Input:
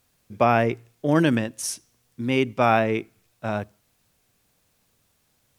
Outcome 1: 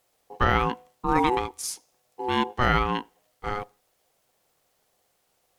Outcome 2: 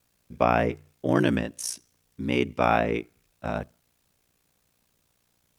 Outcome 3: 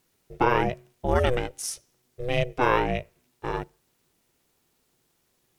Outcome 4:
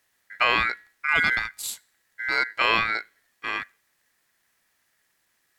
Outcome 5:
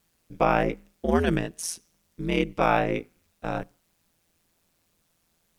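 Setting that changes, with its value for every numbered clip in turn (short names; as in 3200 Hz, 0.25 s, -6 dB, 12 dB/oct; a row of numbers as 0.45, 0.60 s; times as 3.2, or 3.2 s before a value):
ring modulator, frequency: 620, 30, 250, 1800, 84 Hz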